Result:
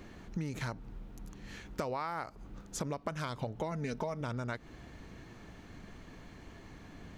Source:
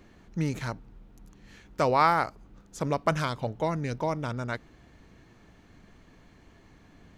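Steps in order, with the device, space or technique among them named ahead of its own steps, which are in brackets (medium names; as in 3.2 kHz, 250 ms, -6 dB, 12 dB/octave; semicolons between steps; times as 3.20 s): 3.71–4.21 s: comb 4.6 ms, depth 58%; serial compression, peaks first (compression 6:1, threshold -33 dBFS, peak gain reduction 15.5 dB; compression 2:1, threshold -41 dBFS, peak gain reduction 6.5 dB); trim +4.5 dB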